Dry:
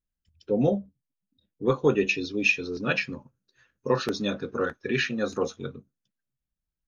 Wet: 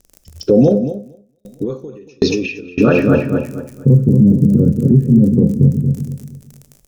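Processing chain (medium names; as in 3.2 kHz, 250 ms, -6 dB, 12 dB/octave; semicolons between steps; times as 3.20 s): low-pass sweep 5.3 kHz -> 160 Hz, 2.20–3.87 s; crackle 30 per s -45 dBFS; high-order bell 1.9 kHz -12.5 dB 2.8 oct; compression 2:1, threshold -33 dBFS, peak gain reduction 9.5 dB; feedback delay 231 ms, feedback 32%, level -6 dB; reverberation RT60 1.0 s, pre-delay 8 ms, DRR 12.5 dB; loudness maximiser +26.5 dB; 0.68–2.78 s: sawtooth tremolo in dB decaying 1.3 Hz, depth 38 dB; trim -1 dB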